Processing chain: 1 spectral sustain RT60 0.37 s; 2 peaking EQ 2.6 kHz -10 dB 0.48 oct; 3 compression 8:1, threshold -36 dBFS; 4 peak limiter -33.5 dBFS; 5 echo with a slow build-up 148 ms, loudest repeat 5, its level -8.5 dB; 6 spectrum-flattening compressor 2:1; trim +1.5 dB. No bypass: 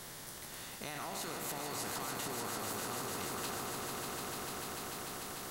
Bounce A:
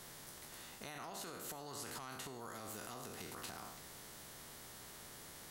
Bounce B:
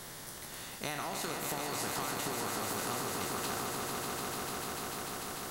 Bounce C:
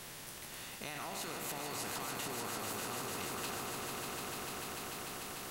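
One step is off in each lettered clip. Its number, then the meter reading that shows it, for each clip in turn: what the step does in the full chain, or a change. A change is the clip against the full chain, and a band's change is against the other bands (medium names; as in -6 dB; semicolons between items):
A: 5, crest factor change +3.0 dB; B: 4, crest factor change +1.5 dB; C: 2, 2 kHz band +1.5 dB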